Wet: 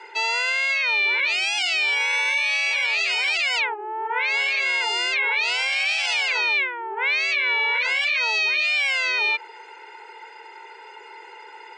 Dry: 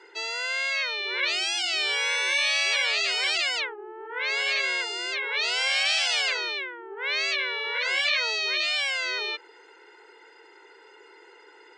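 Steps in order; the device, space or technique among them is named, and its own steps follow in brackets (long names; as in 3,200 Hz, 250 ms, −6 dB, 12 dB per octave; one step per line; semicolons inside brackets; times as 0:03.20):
laptop speaker (high-pass filter 380 Hz 24 dB per octave; parametric band 890 Hz +12 dB 0.24 octaves; parametric band 2,400 Hz +11 dB 0.32 octaves; brickwall limiter −20.5 dBFS, peak gain reduction 13.5 dB)
level +5.5 dB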